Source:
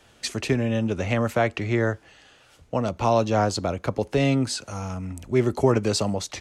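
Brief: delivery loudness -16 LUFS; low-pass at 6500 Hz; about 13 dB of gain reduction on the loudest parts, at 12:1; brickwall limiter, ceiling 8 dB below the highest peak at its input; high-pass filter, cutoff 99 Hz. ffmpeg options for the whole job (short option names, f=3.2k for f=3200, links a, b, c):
-af "highpass=99,lowpass=6.5k,acompressor=threshold=-28dB:ratio=12,volume=20dB,alimiter=limit=-5.5dB:level=0:latency=1"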